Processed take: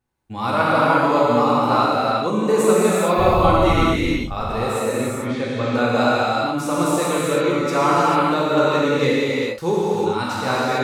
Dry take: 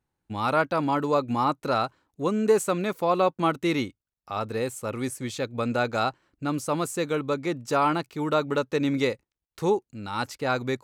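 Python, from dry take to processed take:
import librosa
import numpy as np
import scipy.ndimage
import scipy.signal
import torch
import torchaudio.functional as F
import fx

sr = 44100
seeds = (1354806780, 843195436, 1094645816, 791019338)

y = fx.dmg_wind(x, sr, seeds[0], corner_hz=97.0, level_db=-31.0, at=(3.18, 4.32), fade=0.02)
y = fx.lowpass(y, sr, hz=fx.line((4.86, 2100.0), (5.7, 4500.0)), slope=12, at=(4.86, 5.7), fade=0.02)
y = fx.rev_gated(y, sr, seeds[1], gate_ms=470, shape='flat', drr_db=-8.0)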